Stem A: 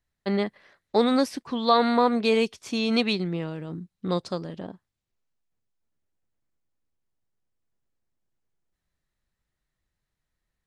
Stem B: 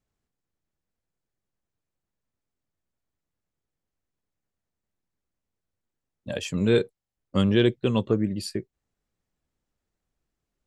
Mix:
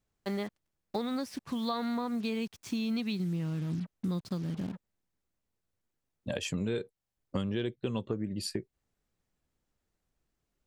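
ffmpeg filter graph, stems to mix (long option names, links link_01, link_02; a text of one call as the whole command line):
ffmpeg -i stem1.wav -i stem2.wav -filter_complex "[0:a]highpass=frequency=130:poles=1,asubboost=boost=10:cutoff=180,acrusher=bits=6:mix=0:aa=0.5,volume=-5dB[link_01];[1:a]volume=0.5dB[link_02];[link_01][link_02]amix=inputs=2:normalize=0,acompressor=threshold=-30dB:ratio=6" out.wav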